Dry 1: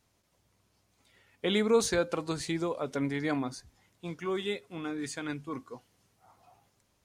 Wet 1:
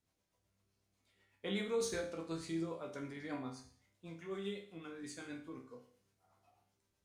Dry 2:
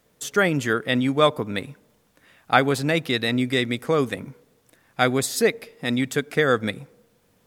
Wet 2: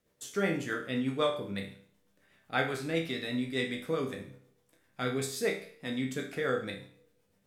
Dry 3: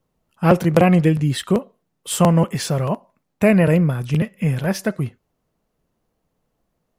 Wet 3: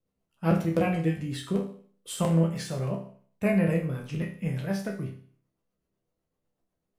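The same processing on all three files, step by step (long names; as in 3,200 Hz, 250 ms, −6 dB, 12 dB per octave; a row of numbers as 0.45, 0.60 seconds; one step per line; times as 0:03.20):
rotating-speaker cabinet horn 8 Hz
resonators tuned to a chord C2 major, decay 0.5 s
level +5 dB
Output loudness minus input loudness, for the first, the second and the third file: −10.5, −10.5, −10.0 LU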